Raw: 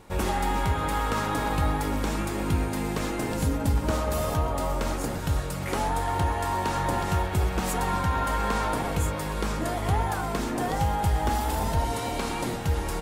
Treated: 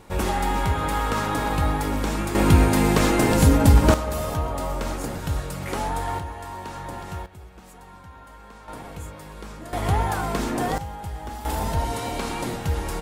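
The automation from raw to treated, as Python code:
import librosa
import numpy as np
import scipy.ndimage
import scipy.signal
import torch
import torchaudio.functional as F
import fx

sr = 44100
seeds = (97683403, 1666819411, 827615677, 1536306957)

y = fx.gain(x, sr, db=fx.steps((0.0, 2.5), (2.35, 10.0), (3.94, 0.0), (6.19, -8.0), (7.26, -19.0), (8.68, -10.0), (9.73, 3.0), (10.78, -9.0), (11.45, 1.0)))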